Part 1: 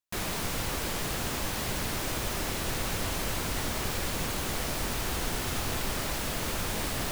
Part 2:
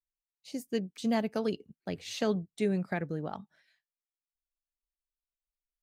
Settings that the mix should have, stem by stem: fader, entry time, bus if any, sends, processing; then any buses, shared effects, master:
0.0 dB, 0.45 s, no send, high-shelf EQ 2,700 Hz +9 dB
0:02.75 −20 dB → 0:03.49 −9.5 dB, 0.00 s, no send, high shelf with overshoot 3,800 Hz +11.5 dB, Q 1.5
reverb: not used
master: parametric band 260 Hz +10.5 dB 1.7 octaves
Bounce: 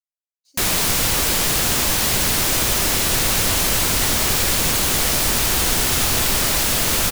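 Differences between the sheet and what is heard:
stem 1 0.0 dB → +9.0 dB
master: missing parametric band 260 Hz +10.5 dB 1.7 octaves

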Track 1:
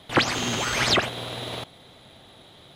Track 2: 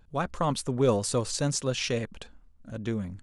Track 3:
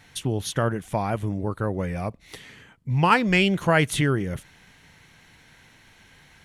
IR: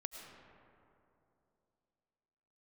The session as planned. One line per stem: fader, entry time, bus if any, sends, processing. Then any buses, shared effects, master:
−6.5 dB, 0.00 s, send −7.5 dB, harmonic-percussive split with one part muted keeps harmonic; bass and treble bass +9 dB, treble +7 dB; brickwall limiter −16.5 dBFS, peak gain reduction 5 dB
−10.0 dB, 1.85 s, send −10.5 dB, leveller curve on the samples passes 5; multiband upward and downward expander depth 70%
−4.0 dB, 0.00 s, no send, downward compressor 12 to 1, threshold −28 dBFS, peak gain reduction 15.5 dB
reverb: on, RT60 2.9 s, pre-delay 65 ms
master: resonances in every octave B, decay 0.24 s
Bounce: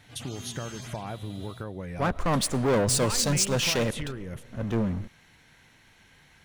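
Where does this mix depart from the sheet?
stem 1 −6.5 dB → −17.5 dB
master: missing resonances in every octave B, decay 0.24 s

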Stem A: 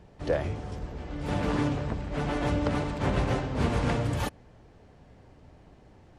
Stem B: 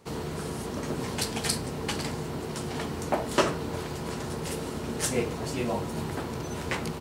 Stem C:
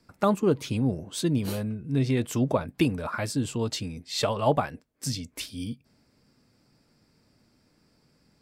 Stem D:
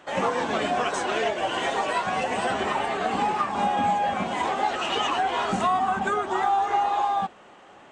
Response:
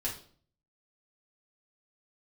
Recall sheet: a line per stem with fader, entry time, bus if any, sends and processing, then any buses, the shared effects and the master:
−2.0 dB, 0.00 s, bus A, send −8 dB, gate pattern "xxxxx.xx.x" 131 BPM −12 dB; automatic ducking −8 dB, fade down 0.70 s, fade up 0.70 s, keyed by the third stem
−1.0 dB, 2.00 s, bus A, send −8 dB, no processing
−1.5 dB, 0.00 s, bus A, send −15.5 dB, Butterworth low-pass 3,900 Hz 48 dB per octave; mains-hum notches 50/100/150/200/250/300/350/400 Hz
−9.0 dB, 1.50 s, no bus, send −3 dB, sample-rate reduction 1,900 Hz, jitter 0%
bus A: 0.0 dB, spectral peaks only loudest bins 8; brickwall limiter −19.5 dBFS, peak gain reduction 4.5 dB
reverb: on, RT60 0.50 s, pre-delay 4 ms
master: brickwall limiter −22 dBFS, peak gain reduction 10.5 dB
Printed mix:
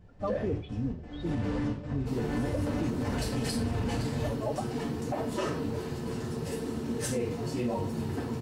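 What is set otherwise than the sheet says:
stem C −1.5 dB → −7.5 dB
stem D: muted

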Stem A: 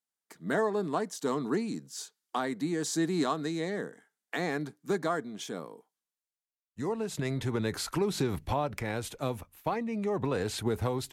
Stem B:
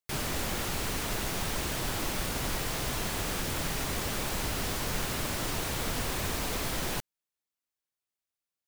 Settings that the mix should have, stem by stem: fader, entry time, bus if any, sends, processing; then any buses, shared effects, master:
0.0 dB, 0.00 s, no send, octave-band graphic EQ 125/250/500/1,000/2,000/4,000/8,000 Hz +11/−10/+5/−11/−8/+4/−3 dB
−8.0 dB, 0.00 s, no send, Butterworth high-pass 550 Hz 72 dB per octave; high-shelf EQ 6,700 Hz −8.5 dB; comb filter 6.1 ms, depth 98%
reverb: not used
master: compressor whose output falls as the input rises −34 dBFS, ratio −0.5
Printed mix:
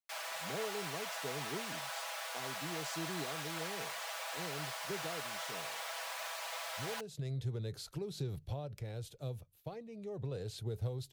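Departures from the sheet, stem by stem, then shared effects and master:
stem A 0.0 dB → −11.5 dB
master: missing compressor whose output falls as the input rises −34 dBFS, ratio −0.5

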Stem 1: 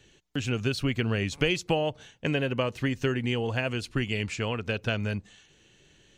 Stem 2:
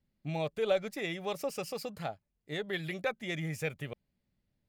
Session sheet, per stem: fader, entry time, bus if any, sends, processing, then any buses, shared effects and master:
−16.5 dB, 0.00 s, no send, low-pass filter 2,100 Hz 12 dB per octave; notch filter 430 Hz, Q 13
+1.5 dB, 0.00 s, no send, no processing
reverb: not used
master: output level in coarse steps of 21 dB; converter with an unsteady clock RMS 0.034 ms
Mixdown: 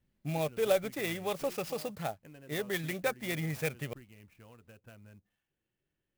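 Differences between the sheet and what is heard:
stem 1 −16.5 dB → −24.5 dB
master: missing output level in coarse steps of 21 dB

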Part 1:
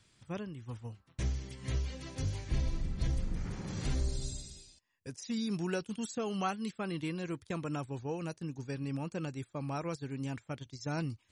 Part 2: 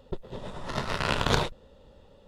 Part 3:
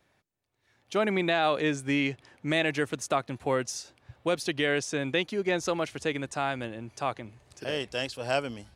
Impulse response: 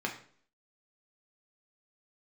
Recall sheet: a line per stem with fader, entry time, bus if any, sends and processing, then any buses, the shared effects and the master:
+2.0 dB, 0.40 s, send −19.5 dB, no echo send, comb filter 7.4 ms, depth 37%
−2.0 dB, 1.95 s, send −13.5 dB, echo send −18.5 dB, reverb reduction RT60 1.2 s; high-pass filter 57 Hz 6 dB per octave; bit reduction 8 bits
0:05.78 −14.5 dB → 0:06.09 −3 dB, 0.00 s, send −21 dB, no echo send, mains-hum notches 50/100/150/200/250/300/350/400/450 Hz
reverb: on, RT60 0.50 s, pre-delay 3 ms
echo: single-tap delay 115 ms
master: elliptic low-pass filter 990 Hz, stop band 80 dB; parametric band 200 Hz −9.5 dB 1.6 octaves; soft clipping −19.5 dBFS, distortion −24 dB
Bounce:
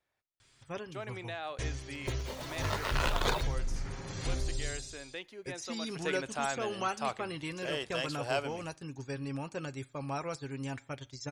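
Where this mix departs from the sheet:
stem 3: missing mains-hum notches 50/100/150/200/250/300/350/400/450 Hz
master: missing elliptic low-pass filter 990 Hz, stop band 80 dB

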